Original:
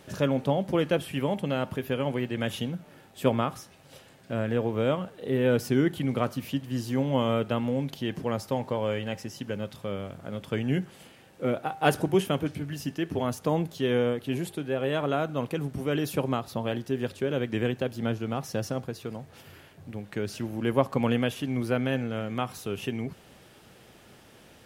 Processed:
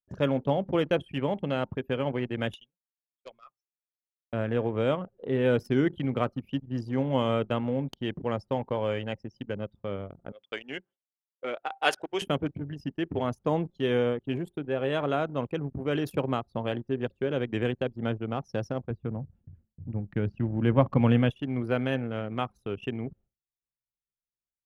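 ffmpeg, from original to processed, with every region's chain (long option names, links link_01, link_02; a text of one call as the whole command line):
ffmpeg -i in.wav -filter_complex "[0:a]asettb=1/sr,asplit=3[link_01][link_02][link_03];[link_01]atrim=end=2.544[link_04];[link_02]atrim=start=2.54:end=4.33,asetpts=PTS-STARTPTS,afade=type=in:duration=0.004:curve=qsin,afade=type=out:start_time=1.786:duration=0.004:curve=qsin,bandpass=frequency=5900:width_type=q:width=0.52,aeval=exprs='0.0335*(abs(mod(val(0)/0.0335+3,4)-2)-1)':channel_layout=same[link_05];[link_03]atrim=start=4.326[link_06];[link_04][link_05]acrossfade=duration=0.004:curve1=hsin:curve2=qsin[link_07];[link_07][link_06]acrossfade=duration=0.004:curve1=qsin:curve2=hsin,asettb=1/sr,asplit=3[link_08][link_09][link_10];[link_08]atrim=end=10.324[link_11];[link_09]atrim=start=10.32:end=12.22,asetpts=PTS-STARTPTS,afade=type=in:duration=0.004:curve=qsin,afade=type=out:start_time=1.896:duration=0.004:curve=qsin,highpass=380,lowpass=7000,tiltshelf=frequency=1200:gain=-5.5[link_12];[link_10]atrim=start=12.216[link_13];[link_11][link_12]acrossfade=duration=0.004:curve1=hsin:curve2=qsin[link_14];[link_14][link_13]acrossfade=duration=0.004:curve1=qsin:curve2=hsin,asettb=1/sr,asplit=3[link_15][link_16][link_17];[link_15]atrim=end=18.904[link_18];[link_16]atrim=start=18.9:end=21.3,asetpts=PTS-STARTPTS,afade=type=in:duration=0.004:curve=qsin,afade=type=out:start_time=2.396:duration=0.004:curve=qsin,bass=frequency=250:gain=9,treble=frequency=4000:gain=-8,bandreject=frequency=400:width=12,aecho=1:1:535:0.106,atrim=end_sample=105840[link_19];[link_17]atrim=start=21.296[link_20];[link_18][link_19]acrossfade=duration=0.004:curve1=hsin:curve2=qsin[link_21];[link_21][link_20]acrossfade=duration=0.004:curve1=qsin:curve2=hsin,anlmdn=6.31,agate=range=-33dB:threshold=-49dB:ratio=3:detection=peak,equalizer=frequency=190:width=1.5:gain=-2.5" out.wav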